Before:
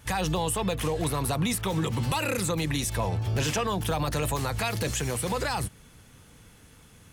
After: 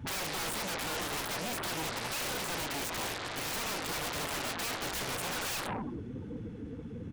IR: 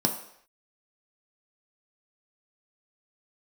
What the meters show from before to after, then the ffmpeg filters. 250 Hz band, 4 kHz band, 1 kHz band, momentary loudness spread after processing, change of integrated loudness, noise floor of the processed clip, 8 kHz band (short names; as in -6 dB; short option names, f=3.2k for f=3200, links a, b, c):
-9.5 dB, -1.5 dB, -6.0 dB, 8 LU, -6.5 dB, -43 dBFS, -4.5 dB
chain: -filter_complex "[0:a]highshelf=f=2.4k:g=-9,asplit=6[a][b][c][d][e][f];[b]adelay=84,afreqshift=49,volume=-24dB[g];[c]adelay=168,afreqshift=98,volume=-27.9dB[h];[d]adelay=252,afreqshift=147,volume=-31.8dB[i];[e]adelay=336,afreqshift=196,volume=-35.6dB[j];[f]adelay=420,afreqshift=245,volume=-39.5dB[k];[a][g][h][i][j][k]amix=inputs=6:normalize=0,asplit=2[l][m];[1:a]atrim=start_sample=2205,lowshelf=f=96:g=-12[n];[m][n]afir=irnorm=-1:irlink=0,volume=-26dB[o];[l][o]amix=inputs=2:normalize=0,asoftclip=type=tanh:threshold=-34dB,afftdn=nr=27:nf=-48,adynamicsmooth=sensitivity=6.5:basefreq=4.7k,aeval=exprs='0.0237*(cos(1*acos(clip(val(0)/0.0237,-1,1)))-cos(1*PI/2))+0.000668*(cos(2*acos(clip(val(0)/0.0237,-1,1)))-cos(2*PI/2))+0.000841*(cos(3*acos(clip(val(0)/0.0237,-1,1)))-cos(3*PI/2))+0.0075*(cos(5*acos(clip(val(0)/0.0237,-1,1)))-cos(5*PI/2))':c=same,highpass=f=620:p=1,afftfilt=real='re*lt(hypot(re,im),0.0316)':imag='im*lt(hypot(re,im),0.0316)':win_size=1024:overlap=0.75,aeval=exprs='0.0282*sin(PI/2*7.94*val(0)/0.0282)':c=same,volume=-1dB"